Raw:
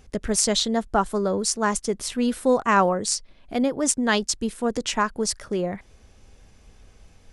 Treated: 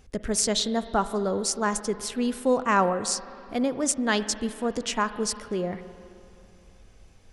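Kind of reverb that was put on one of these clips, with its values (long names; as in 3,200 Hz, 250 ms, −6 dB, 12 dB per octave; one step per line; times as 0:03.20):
spring reverb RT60 2.7 s, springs 43/51/57 ms, chirp 40 ms, DRR 12.5 dB
level −3 dB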